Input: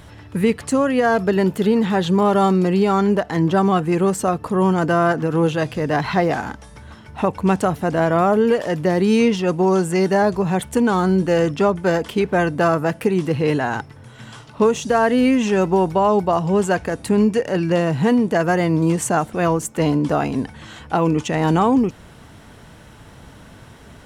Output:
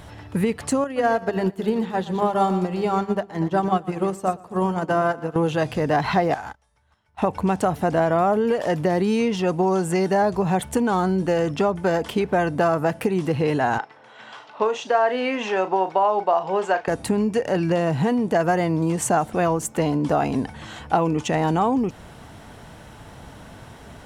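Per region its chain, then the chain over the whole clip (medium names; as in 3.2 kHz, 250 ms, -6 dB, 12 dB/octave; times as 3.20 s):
0.84–5.36 s: hum notches 50/100/150/200/250/300/350/400 Hz + feedback delay 119 ms, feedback 48%, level -11.5 dB + upward expansion 2.5:1, over -26 dBFS
6.34–7.22 s: peaking EQ 240 Hz -11.5 dB 1.9 oct + compression 3:1, threshold -32 dBFS + gate -38 dBFS, range -23 dB
13.78–16.88 s: band-pass 510–3900 Hz + doubling 37 ms -12 dB
whole clip: compression, threshold -18 dBFS; peaking EQ 750 Hz +5 dB 0.69 oct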